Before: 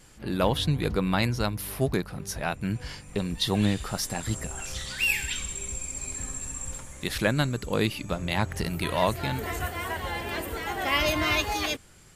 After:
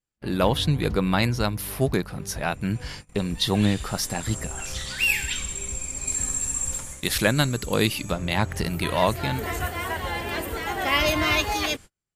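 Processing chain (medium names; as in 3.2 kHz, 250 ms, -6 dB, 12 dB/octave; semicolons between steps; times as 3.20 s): gate -42 dBFS, range -39 dB; 6.07–8.12 s: treble shelf 4.4 kHz +8.5 dB; trim +3 dB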